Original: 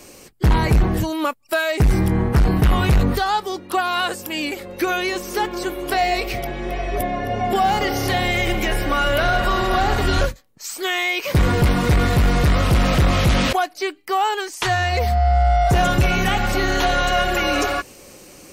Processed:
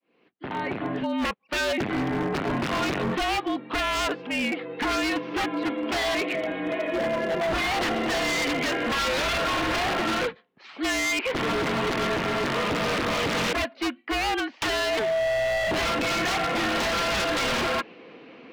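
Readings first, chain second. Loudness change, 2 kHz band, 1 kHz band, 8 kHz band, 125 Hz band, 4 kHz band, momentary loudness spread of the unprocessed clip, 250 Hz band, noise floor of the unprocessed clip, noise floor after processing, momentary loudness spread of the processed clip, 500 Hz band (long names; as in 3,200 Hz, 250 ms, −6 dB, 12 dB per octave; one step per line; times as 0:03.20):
−6.0 dB, −3.5 dB, −7.5 dB, −4.0 dB, −17.0 dB, −3.0 dB, 8 LU, −5.0 dB, −44 dBFS, −54 dBFS, 5 LU, −3.5 dB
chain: fade in at the beginning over 1.37 s
single-sideband voice off tune −56 Hz 260–3,400 Hz
wave folding −20.5 dBFS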